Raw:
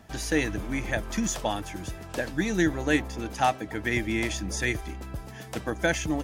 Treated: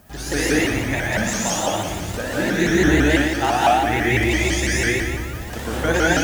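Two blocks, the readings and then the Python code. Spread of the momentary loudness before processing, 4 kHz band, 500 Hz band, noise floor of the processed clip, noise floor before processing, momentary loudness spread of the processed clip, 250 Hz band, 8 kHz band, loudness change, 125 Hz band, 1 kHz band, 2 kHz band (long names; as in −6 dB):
12 LU, +10.0 dB, +9.0 dB, −31 dBFS, −42 dBFS, 10 LU, +8.0 dB, +9.5 dB, +9.0 dB, +9.5 dB, +10.0 dB, +9.5 dB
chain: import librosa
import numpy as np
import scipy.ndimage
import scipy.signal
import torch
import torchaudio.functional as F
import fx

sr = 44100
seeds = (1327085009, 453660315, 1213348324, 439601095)

y = fx.dmg_noise_colour(x, sr, seeds[0], colour='violet', level_db=-57.0)
y = fx.room_flutter(y, sr, wall_m=10.2, rt60_s=1.3)
y = fx.rev_gated(y, sr, seeds[1], gate_ms=240, shape='rising', drr_db=-5.5)
y = fx.vibrato_shape(y, sr, shape='saw_up', rate_hz=6.0, depth_cents=160.0)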